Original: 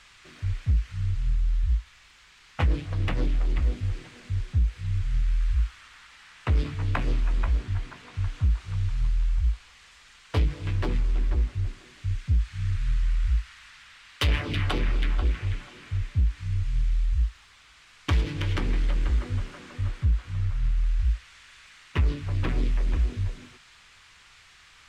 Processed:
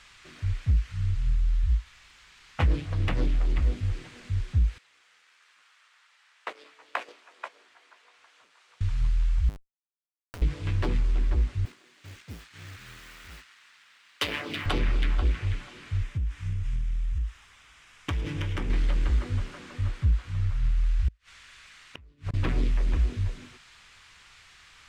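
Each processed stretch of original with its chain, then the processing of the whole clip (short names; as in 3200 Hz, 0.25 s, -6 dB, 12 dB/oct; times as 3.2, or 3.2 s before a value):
4.78–8.81 HPF 470 Hz 24 dB/oct + gate -40 dBFS, range -11 dB
9.49–10.42 Schmitt trigger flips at -39.5 dBFS + compressor 12:1, threshold -39 dBFS
11.65–14.66 G.711 law mismatch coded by A + HPF 250 Hz
16.03–18.7 bell 4300 Hz -8.5 dB 0.32 oct + compressor, threshold -25 dBFS + hard clip -21.5 dBFS
21.08–22.34 notch 890 Hz, Q 21 + flipped gate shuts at -22 dBFS, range -31 dB
whole clip: dry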